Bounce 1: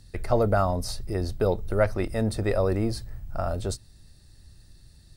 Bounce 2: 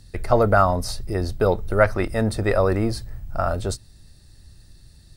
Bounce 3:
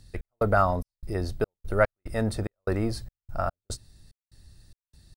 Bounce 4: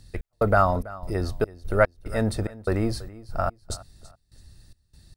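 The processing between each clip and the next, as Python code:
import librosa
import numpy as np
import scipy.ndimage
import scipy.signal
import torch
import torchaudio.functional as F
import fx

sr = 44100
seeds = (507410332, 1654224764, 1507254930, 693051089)

y1 = fx.dynamic_eq(x, sr, hz=1400.0, q=0.95, threshold_db=-40.0, ratio=4.0, max_db=7)
y1 = y1 * librosa.db_to_amplitude(3.5)
y2 = fx.step_gate(y1, sr, bpm=73, pattern='x.xx.xx.', floor_db=-60.0, edge_ms=4.5)
y2 = y2 * librosa.db_to_amplitude(-5.0)
y3 = fx.echo_feedback(y2, sr, ms=330, feedback_pct=28, wet_db=-19.0)
y3 = y3 * librosa.db_to_amplitude(2.5)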